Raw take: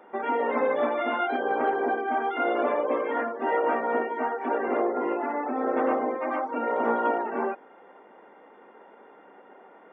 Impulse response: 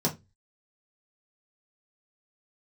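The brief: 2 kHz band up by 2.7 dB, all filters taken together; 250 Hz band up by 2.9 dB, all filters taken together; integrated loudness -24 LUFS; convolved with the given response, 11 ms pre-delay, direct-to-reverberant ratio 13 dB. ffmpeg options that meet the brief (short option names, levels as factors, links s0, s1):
-filter_complex "[0:a]equalizer=f=250:t=o:g=3.5,equalizer=f=2000:t=o:g=3.5,asplit=2[s0][s1];[1:a]atrim=start_sample=2205,adelay=11[s2];[s1][s2]afir=irnorm=-1:irlink=0,volume=0.0794[s3];[s0][s3]amix=inputs=2:normalize=0,volume=1.12"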